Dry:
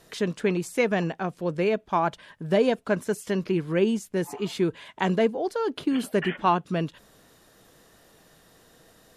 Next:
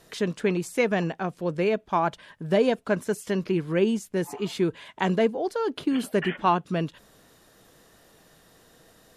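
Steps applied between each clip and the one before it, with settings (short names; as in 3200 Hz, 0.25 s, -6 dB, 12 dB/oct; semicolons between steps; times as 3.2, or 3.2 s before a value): nothing audible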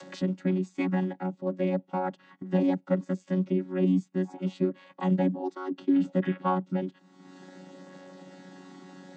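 chord vocoder bare fifth, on F#3; upward compressor, threshold -32 dBFS; gain -1.5 dB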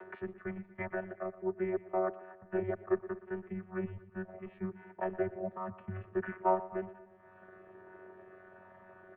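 mistuned SSB -180 Hz 490–2200 Hz; feedback echo 0.119 s, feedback 54%, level -16 dB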